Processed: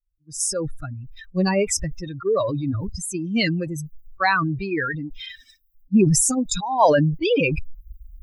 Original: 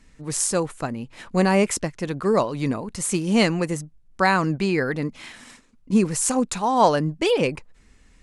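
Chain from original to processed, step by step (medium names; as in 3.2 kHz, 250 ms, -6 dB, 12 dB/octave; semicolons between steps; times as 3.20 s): expander on every frequency bin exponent 3; decay stretcher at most 26 dB/s; trim +3.5 dB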